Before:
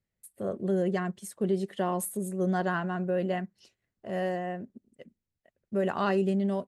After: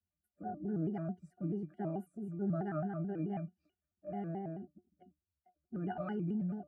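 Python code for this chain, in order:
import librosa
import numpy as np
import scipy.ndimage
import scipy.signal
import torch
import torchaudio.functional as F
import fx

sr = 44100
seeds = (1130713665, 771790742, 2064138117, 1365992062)

y = fx.spec_quant(x, sr, step_db=15)
y = fx.fixed_phaser(y, sr, hz=650.0, stages=8)
y = fx.octave_resonator(y, sr, note='E', decay_s=0.15)
y = fx.vibrato_shape(y, sr, shape='square', rate_hz=4.6, depth_cents=160.0)
y = y * librosa.db_to_amplitude(6.5)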